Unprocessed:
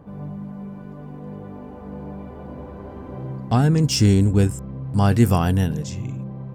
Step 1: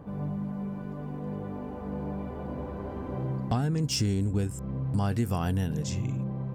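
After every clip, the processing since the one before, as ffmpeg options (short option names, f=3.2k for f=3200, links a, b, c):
-af "acompressor=threshold=-25dB:ratio=6"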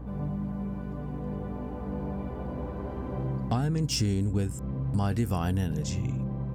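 -af "aeval=exprs='val(0)+0.0112*(sin(2*PI*60*n/s)+sin(2*PI*2*60*n/s)/2+sin(2*PI*3*60*n/s)/3+sin(2*PI*4*60*n/s)/4+sin(2*PI*5*60*n/s)/5)':c=same"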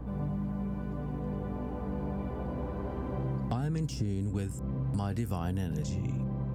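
-filter_complex "[0:a]acrossover=split=140|1100[a][b][c];[a]acompressor=threshold=-34dB:ratio=4[d];[b]acompressor=threshold=-33dB:ratio=4[e];[c]acompressor=threshold=-47dB:ratio=4[f];[d][e][f]amix=inputs=3:normalize=0"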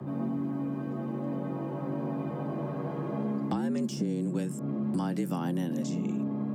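-af "afreqshift=81,volume=1.5dB"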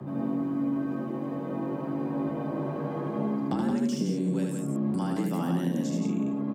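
-af "aecho=1:1:75.8|172:0.708|0.562"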